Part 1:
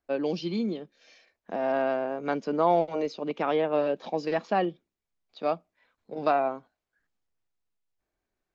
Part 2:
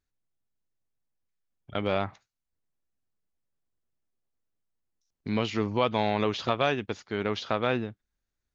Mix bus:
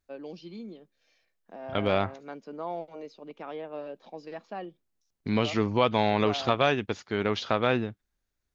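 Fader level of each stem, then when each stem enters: -12.5 dB, +2.0 dB; 0.00 s, 0.00 s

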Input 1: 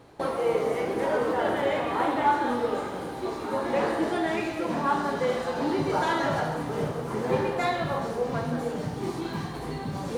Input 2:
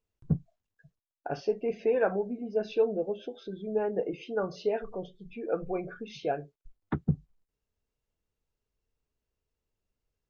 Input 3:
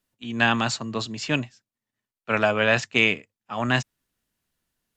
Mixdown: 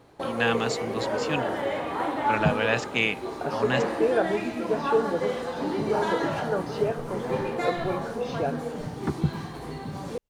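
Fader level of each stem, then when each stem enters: -2.5 dB, +2.0 dB, -5.0 dB; 0.00 s, 2.15 s, 0.00 s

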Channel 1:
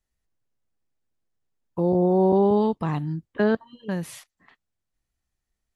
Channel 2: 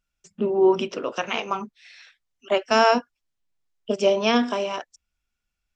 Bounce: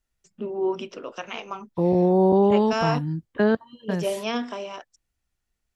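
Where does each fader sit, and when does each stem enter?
+1.0 dB, -7.5 dB; 0.00 s, 0.00 s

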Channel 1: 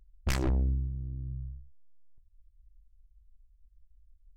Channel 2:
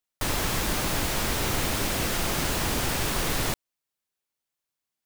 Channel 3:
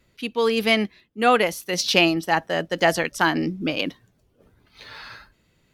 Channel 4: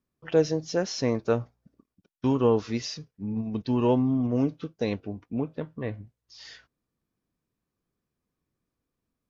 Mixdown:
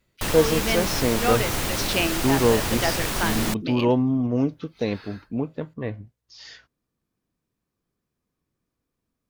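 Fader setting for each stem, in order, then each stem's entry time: mute, +0.5 dB, -7.0 dB, +2.5 dB; mute, 0.00 s, 0.00 s, 0.00 s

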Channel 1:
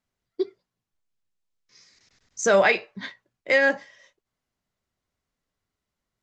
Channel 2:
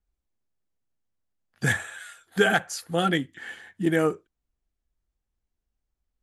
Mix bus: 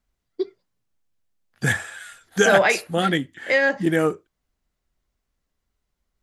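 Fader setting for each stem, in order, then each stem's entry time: +0.5 dB, +2.5 dB; 0.00 s, 0.00 s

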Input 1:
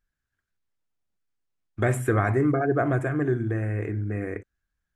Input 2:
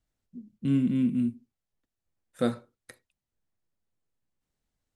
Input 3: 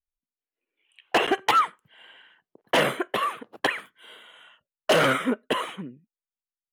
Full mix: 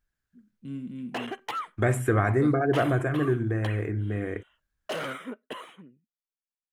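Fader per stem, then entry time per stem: -0.5 dB, -12.0 dB, -13.0 dB; 0.00 s, 0.00 s, 0.00 s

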